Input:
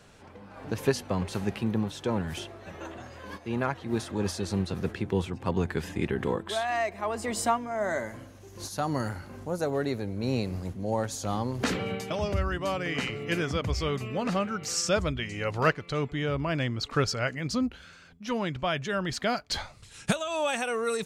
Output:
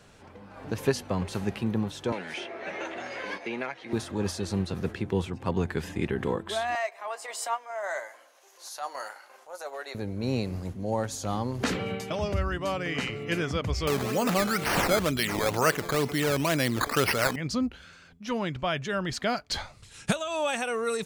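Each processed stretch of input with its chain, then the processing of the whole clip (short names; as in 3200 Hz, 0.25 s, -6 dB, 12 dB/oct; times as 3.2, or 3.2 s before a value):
2.12–3.93 speaker cabinet 360–8900 Hz, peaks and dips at 1100 Hz -5 dB, 2200 Hz +9 dB, 7600 Hz -8 dB + doubler 16 ms -12.5 dB + three-band squash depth 100%
6.75–9.95 HPF 600 Hz 24 dB/oct + transient shaper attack -9 dB, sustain -3 dB + doubler 15 ms -12 dB
13.87–17.36 Bessel high-pass 210 Hz + decimation with a swept rate 11× 2.1 Hz + fast leveller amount 50%
whole clip: dry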